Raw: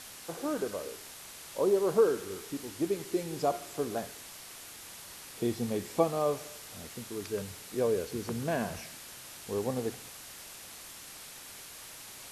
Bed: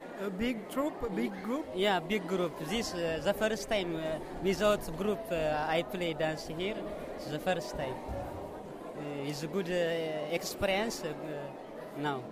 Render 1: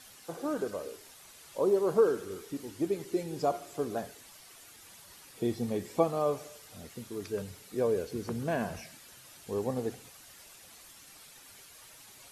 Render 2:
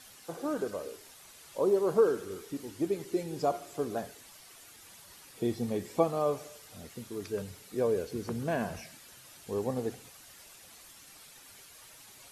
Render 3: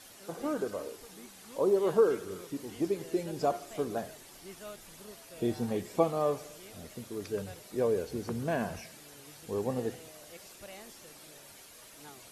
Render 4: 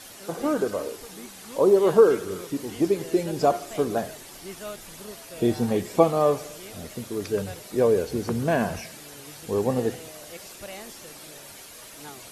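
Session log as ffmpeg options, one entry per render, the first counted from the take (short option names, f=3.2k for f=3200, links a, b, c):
-af "afftdn=nr=9:nf=-48"
-af anull
-filter_complex "[1:a]volume=-18.5dB[a];[0:a][a]amix=inputs=2:normalize=0"
-af "volume=8.5dB"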